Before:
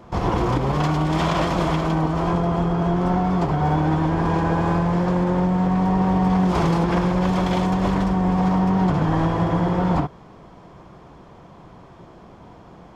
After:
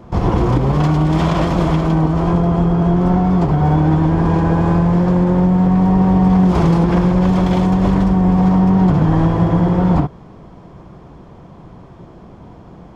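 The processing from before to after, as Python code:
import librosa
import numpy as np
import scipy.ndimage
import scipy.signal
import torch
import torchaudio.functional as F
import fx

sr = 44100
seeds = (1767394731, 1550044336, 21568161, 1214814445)

y = fx.low_shelf(x, sr, hz=450.0, db=8.5)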